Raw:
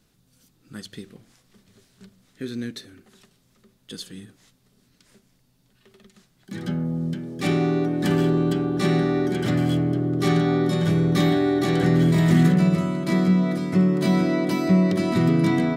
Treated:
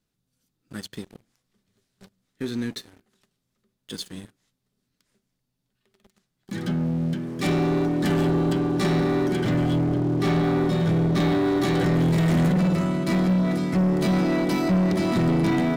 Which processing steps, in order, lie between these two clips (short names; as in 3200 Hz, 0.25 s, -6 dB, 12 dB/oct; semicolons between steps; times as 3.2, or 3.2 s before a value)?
9.4–11.46 high shelf 5800 Hz -9.5 dB; sample leveller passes 3; gain -9 dB